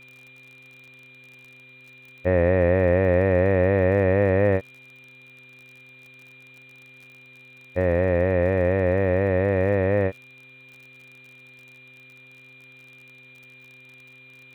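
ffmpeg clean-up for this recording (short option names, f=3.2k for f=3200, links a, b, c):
-af "adeclick=t=4,bandreject=f=128.5:t=h:w=4,bandreject=f=257:t=h:w=4,bandreject=f=385.5:t=h:w=4,bandreject=f=514:t=h:w=4,bandreject=f=2.4k:w=30,afftdn=nr=19:nf=-49"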